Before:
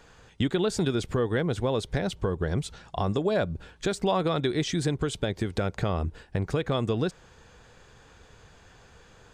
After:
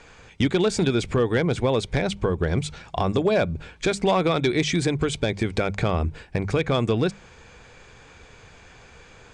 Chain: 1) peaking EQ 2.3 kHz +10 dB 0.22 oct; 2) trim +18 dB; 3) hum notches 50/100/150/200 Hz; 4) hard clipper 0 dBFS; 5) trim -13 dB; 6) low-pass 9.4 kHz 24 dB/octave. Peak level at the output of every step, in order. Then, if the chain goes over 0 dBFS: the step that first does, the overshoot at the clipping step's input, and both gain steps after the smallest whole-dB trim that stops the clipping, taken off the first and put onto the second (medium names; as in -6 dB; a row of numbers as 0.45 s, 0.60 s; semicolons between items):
-11.5 dBFS, +6.5 dBFS, +6.5 dBFS, 0.0 dBFS, -13.0 dBFS, -12.5 dBFS; step 2, 6.5 dB; step 2 +11 dB, step 5 -6 dB